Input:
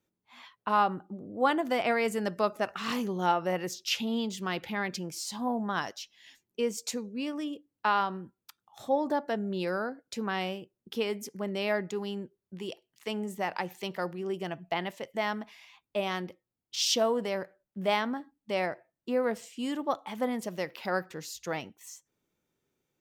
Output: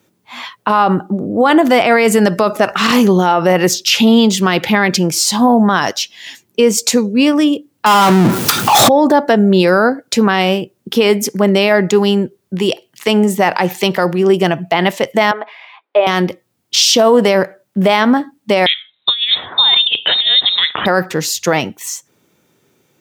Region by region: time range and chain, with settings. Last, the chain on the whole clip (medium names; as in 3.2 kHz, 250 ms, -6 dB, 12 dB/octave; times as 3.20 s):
7.86–8.89 s: high-pass 86 Hz 24 dB/octave + power-law waveshaper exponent 0.35
15.31–16.07 s: high-pass 440 Hz 24 dB/octave + distance through air 460 m + band-stop 2.7 kHz, Q 24
18.66–20.86 s: frequency inversion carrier 3.9 kHz + compressor with a negative ratio -33 dBFS, ratio -0.5
whole clip: high-pass 89 Hz 24 dB/octave; loudness maximiser +24 dB; trim -1 dB